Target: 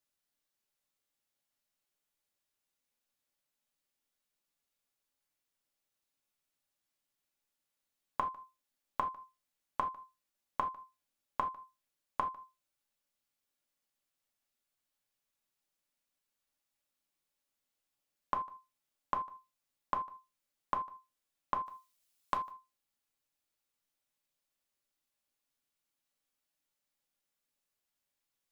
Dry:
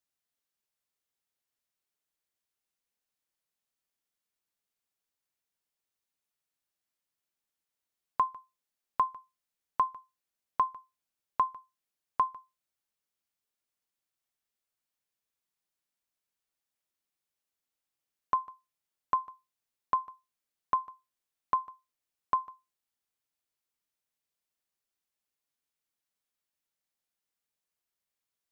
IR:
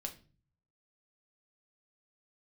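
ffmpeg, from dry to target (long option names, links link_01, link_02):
-filter_complex "[0:a]asettb=1/sr,asplit=3[link_01][link_02][link_03];[link_01]atrim=end=21.664[link_04];[link_02]atrim=start=21.66:end=22.51,asetpts=PTS-STARTPTS,afade=type=in:duration=0.004:curve=qsin,afade=type=out:start_time=0.846:duration=0.004:curve=qsin,highshelf=frequency=2500:gain=11[link_05];[link_03]atrim=start=22.506[link_06];[link_04][link_05]acrossfade=duration=0.004:curve1=hsin:curve2=qsin[link_07];[link_07][link_06]acrossfade=duration=0.004:curve1=qsin:curve2=hsin,acompressor=threshold=-29dB:ratio=6[link_08];[1:a]atrim=start_sample=2205,atrim=end_sample=3969[link_09];[link_08][link_09]afir=irnorm=-1:irlink=0,volume=3.5dB"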